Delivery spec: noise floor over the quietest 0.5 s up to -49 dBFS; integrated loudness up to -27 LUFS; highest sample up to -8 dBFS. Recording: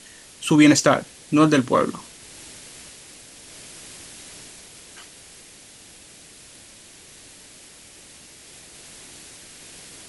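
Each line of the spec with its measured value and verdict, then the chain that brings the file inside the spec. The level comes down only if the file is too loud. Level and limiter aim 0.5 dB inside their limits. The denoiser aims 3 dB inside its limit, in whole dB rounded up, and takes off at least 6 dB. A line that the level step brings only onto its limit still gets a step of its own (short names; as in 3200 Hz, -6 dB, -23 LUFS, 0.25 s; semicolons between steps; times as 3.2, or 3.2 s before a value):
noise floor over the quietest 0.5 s -47 dBFS: fail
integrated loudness -18.5 LUFS: fail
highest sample -3.0 dBFS: fail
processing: gain -9 dB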